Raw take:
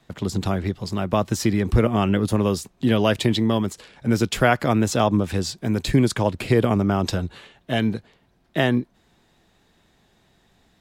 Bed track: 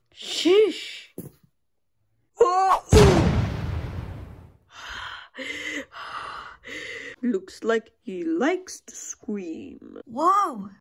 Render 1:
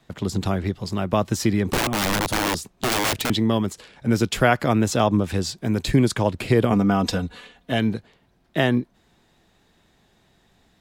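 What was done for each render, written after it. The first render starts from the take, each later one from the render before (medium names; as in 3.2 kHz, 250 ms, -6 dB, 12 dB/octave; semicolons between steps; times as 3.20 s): 1.66–3.30 s: integer overflow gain 16 dB; 6.72–7.72 s: comb 4.1 ms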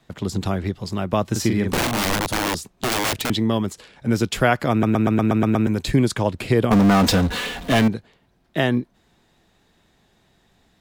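1.31–2.15 s: doubling 43 ms -5 dB; 4.71 s: stutter in place 0.12 s, 8 plays; 6.71–7.88 s: power-law waveshaper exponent 0.5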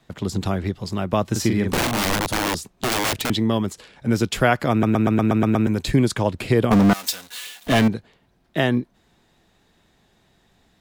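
6.93–7.67 s: differentiator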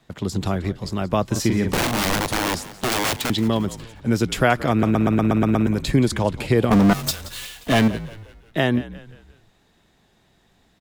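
frequency-shifting echo 176 ms, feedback 45%, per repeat -58 Hz, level -16.5 dB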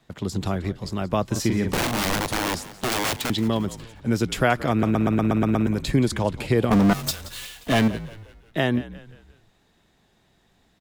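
trim -2.5 dB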